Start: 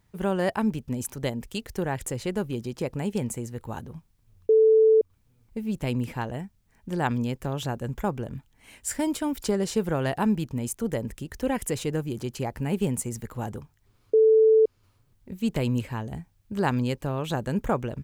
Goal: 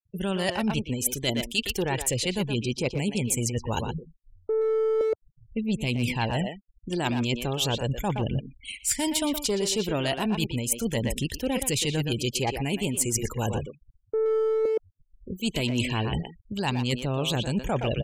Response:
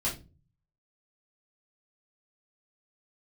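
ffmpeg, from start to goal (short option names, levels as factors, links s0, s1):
-filter_complex "[0:a]aphaser=in_gain=1:out_gain=1:delay=3.3:decay=0.31:speed=0.35:type=triangular,highshelf=f=2100:t=q:w=1.5:g=9.5,asplit=2[s0][s1];[s1]aeval=exprs='clip(val(0),-1,0.0447)':c=same,volume=0.335[s2];[s0][s2]amix=inputs=2:normalize=0,acontrast=78,afftfilt=real='re*gte(hypot(re,im),0.0316)':imag='im*gte(hypot(re,im),0.0316)':win_size=1024:overlap=0.75,asplit=2[s3][s4];[s4]adelay=120,highpass=300,lowpass=3400,asoftclip=type=hard:threshold=0.316,volume=0.447[s5];[s3][s5]amix=inputs=2:normalize=0,areverse,acompressor=threshold=0.0708:ratio=12,areverse"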